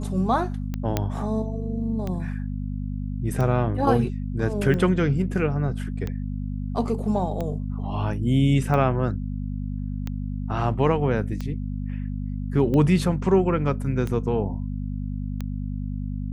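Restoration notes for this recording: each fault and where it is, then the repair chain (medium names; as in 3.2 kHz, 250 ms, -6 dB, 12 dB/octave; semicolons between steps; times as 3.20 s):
hum 50 Hz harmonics 5 -29 dBFS
tick 45 rpm -17 dBFS
0.97 s: pop -8 dBFS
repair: de-click; de-hum 50 Hz, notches 5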